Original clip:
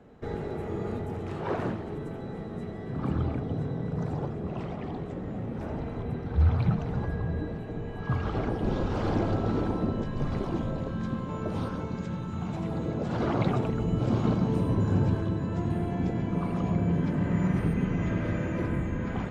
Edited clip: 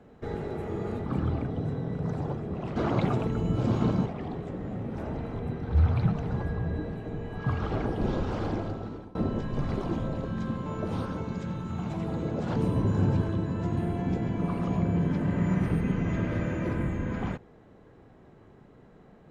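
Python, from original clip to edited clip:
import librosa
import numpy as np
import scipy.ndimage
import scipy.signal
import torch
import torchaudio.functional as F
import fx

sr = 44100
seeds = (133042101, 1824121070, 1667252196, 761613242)

y = fx.edit(x, sr, fx.cut(start_s=1.06, length_s=1.93),
    fx.fade_out_to(start_s=8.77, length_s=1.01, floor_db=-23.5),
    fx.move(start_s=13.19, length_s=1.3, to_s=4.69), tone=tone)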